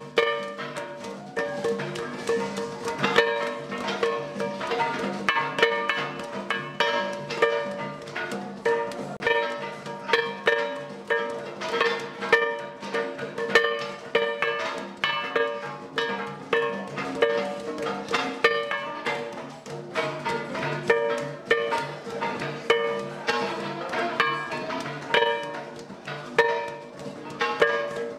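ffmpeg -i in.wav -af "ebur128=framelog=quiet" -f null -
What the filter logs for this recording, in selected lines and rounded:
Integrated loudness:
  I:         -26.7 LUFS
  Threshold: -36.8 LUFS
Loudness range:
  LRA:         2.2 LU
  Threshold: -46.8 LUFS
  LRA low:   -27.7 LUFS
  LRA high:  -25.6 LUFS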